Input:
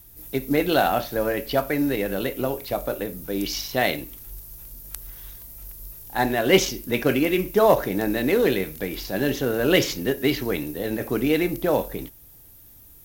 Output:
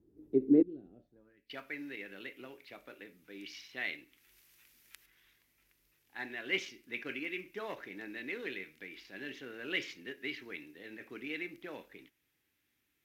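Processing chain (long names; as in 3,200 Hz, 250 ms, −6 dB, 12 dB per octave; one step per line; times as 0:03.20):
0:00.62–0:01.50: guitar amp tone stack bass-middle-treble 10-0-1
band-pass filter sweep 370 Hz → 2,200 Hz, 0:00.87–0:01.48
low shelf with overshoot 460 Hz +9.5 dB, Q 1.5
0:03.82–0:05.06: one half of a high-frequency compander encoder only
level −8.5 dB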